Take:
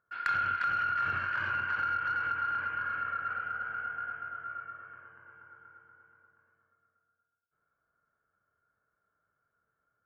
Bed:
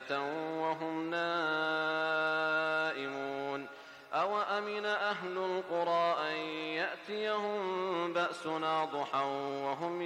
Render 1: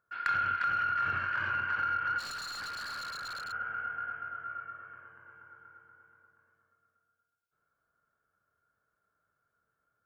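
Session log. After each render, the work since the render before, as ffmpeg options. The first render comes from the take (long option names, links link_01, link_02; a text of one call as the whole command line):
ffmpeg -i in.wav -filter_complex "[0:a]asplit=3[link_01][link_02][link_03];[link_01]afade=type=out:start_time=2.18:duration=0.02[link_04];[link_02]aeval=exprs='0.0178*(abs(mod(val(0)/0.0178+3,4)-2)-1)':channel_layout=same,afade=type=in:start_time=2.18:duration=0.02,afade=type=out:start_time=3.51:duration=0.02[link_05];[link_03]afade=type=in:start_time=3.51:duration=0.02[link_06];[link_04][link_05][link_06]amix=inputs=3:normalize=0" out.wav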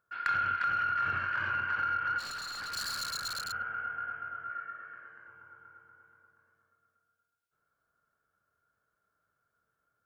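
ffmpeg -i in.wav -filter_complex "[0:a]asettb=1/sr,asplit=3[link_01][link_02][link_03];[link_01]atrim=end=2.724[link_04];[link_02]atrim=start=2.72:end=3.63,asetpts=PTS-STARTPTS,afade=type=in:duration=0.004:curve=qsin,afade=type=out:start_time=0.906:duration=0.004:curve=qsin,bass=frequency=250:gain=5,treble=frequency=4000:gain=13[link_05];[link_03]atrim=start=3.626[link_06];[link_04][link_05]acrossfade=duration=0.004:curve1=hsin:curve2=qsin[link_07];[link_07][link_06]acrossfade=duration=0.004:curve1=qsin:curve2=hsin,asettb=1/sr,asplit=3[link_08][link_09][link_10];[link_08]atrim=end=4.504[link_11];[link_09]atrim=start=4.5:end=5.28,asetpts=PTS-STARTPTS,afade=type=in:duration=0.004:curve=qsin,afade=type=out:start_time=0.776:duration=0.004:curve=qsin,highpass=170,equalizer=frequency=970:width_type=q:width=4:gain=-5,equalizer=frequency=1800:width_type=q:width=4:gain=9,equalizer=frequency=4200:width_type=q:width=4:gain=6,lowpass=frequency=9000:width=0.5412,lowpass=frequency=9000:width=1.3066[link_12];[link_10]atrim=start=5.276[link_13];[link_11][link_12]acrossfade=duration=0.004:curve1=hsin:curve2=qsin[link_14];[link_14][link_13]acrossfade=duration=0.004:curve1=qsin:curve2=hsin" out.wav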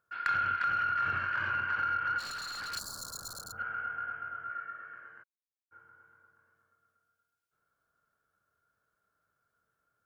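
ffmpeg -i in.wav -filter_complex "[0:a]asplit=3[link_01][link_02][link_03];[link_01]afade=type=out:start_time=2.78:duration=0.02[link_04];[link_02]asuperstop=centerf=2400:order=4:qfactor=0.51,afade=type=in:start_time=2.78:duration=0.02,afade=type=out:start_time=3.57:duration=0.02[link_05];[link_03]afade=type=in:start_time=3.57:duration=0.02[link_06];[link_04][link_05][link_06]amix=inputs=3:normalize=0,asplit=3[link_07][link_08][link_09];[link_07]afade=type=out:start_time=5.22:duration=0.02[link_10];[link_08]acrusher=bits=3:mix=0:aa=0.5,afade=type=in:start_time=5.22:duration=0.02,afade=type=out:start_time=5.71:duration=0.02[link_11];[link_09]afade=type=in:start_time=5.71:duration=0.02[link_12];[link_10][link_11][link_12]amix=inputs=3:normalize=0" out.wav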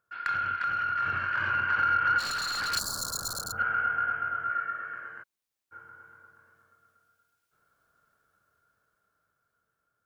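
ffmpeg -i in.wav -af "dynaudnorm=framelen=390:gausssize=9:maxgain=9dB" out.wav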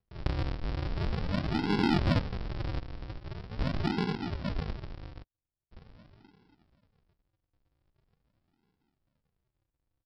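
ffmpeg -i in.wav -af "aresample=11025,acrusher=samples=36:mix=1:aa=0.000001:lfo=1:lforange=36:lforate=0.43,aresample=44100,aeval=exprs='0.178*(cos(1*acos(clip(val(0)/0.178,-1,1)))-cos(1*PI/2))+0.01*(cos(3*acos(clip(val(0)/0.178,-1,1)))-cos(3*PI/2))+0.00178*(cos(7*acos(clip(val(0)/0.178,-1,1)))-cos(7*PI/2))':channel_layout=same" out.wav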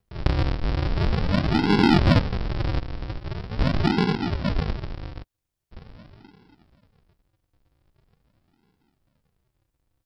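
ffmpeg -i in.wav -af "volume=9dB" out.wav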